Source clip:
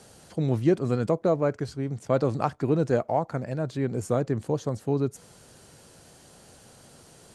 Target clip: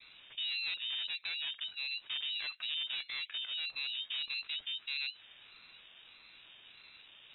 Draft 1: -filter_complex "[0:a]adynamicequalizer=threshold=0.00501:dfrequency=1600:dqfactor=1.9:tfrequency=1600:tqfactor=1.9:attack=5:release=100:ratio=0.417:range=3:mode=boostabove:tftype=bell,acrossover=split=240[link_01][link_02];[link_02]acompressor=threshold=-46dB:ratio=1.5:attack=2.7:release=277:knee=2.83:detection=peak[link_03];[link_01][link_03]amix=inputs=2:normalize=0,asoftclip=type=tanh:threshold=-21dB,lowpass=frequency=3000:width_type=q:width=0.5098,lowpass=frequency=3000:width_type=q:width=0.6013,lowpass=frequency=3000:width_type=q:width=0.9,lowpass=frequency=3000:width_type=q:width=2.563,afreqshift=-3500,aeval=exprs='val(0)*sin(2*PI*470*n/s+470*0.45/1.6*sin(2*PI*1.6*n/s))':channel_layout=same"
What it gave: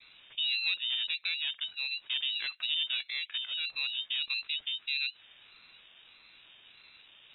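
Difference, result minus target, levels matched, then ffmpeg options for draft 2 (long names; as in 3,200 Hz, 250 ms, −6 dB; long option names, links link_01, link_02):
soft clipping: distortion −11 dB
-filter_complex "[0:a]adynamicequalizer=threshold=0.00501:dfrequency=1600:dqfactor=1.9:tfrequency=1600:tqfactor=1.9:attack=5:release=100:ratio=0.417:range=3:mode=boostabove:tftype=bell,acrossover=split=240[link_01][link_02];[link_02]acompressor=threshold=-46dB:ratio=1.5:attack=2.7:release=277:knee=2.83:detection=peak[link_03];[link_01][link_03]amix=inputs=2:normalize=0,asoftclip=type=tanh:threshold=-32dB,lowpass=frequency=3000:width_type=q:width=0.5098,lowpass=frequency=3000:width_type=q:width=0.6013,lowpass=frequency=3000:width_type=q:width=0.9,lowpass=frequency=3000:width_type=q:width=2.563,afreqshift=-3500,aeval=exprs='val(0)*sin(2*PI*470*n/s+470*0.45/1.6*sin(2*PI*1.6*n/s))':channel_layout=same"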